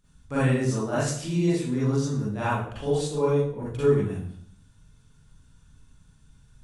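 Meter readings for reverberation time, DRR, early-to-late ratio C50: 0.60 s, −11.0 dB, −2.5 dB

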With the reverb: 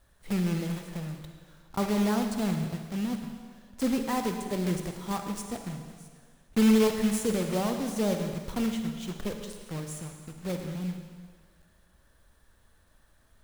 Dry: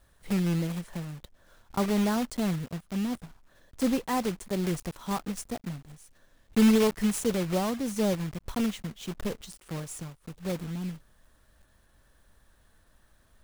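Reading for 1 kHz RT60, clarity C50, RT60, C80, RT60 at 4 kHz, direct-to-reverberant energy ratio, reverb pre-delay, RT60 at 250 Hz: 1.8 s, 5.5 dB, 1.7 s, 7.0 dB, 1.7 s, 5.0 dB, 39 ms, 1.6 s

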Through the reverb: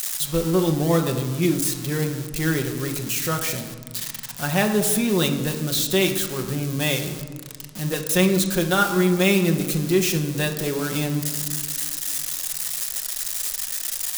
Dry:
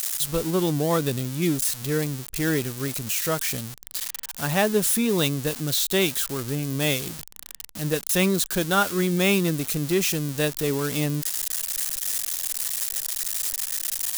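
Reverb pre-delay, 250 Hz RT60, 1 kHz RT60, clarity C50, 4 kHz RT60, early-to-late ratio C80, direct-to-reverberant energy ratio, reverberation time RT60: 5 ms, 2.3 s, 1.5 s, 8.5 dB, 0.80 s, 10.5 dB, 3.0 dB, 1.6 s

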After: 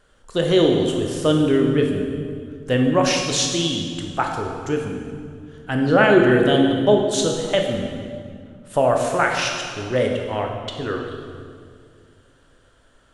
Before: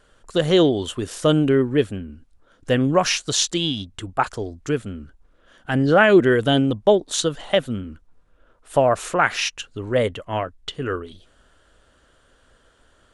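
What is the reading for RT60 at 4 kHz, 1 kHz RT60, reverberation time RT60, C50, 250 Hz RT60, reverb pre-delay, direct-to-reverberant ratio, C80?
1.6 s, 1.9 s, 2.2 s, 3.0 dB, 2.7 s, 18 ms, 1.5 dB, 4.5 dB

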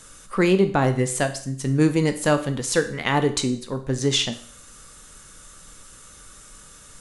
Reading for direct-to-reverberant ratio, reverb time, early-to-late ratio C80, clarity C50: 8.0 dB, 0.55 s, 16.5 dB, 13.0 dB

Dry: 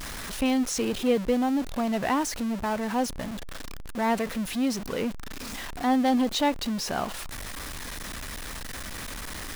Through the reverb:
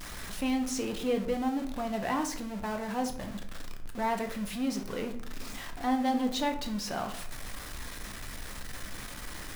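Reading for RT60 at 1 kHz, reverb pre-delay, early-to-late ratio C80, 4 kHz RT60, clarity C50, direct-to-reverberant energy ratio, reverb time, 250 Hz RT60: 0.50 s, 6 ms, 13.5 dB, 0.40 s, 10.5 dB, 4.0 dB, 0.60 s, 0.85 s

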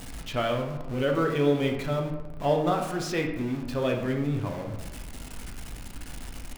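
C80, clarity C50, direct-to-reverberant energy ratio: 9.0 dB, 6.0 dB, 1.5 dB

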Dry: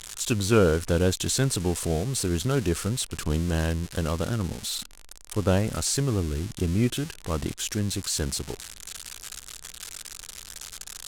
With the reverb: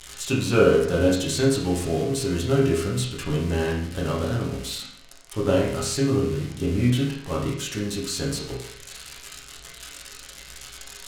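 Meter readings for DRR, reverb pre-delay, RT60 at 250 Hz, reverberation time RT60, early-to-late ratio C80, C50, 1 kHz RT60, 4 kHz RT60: −5.5 dB, 7 ms, 0.65 s, 0.65 s, 7.5 dB, 4.0 dB, 0.60 s, 0.60 s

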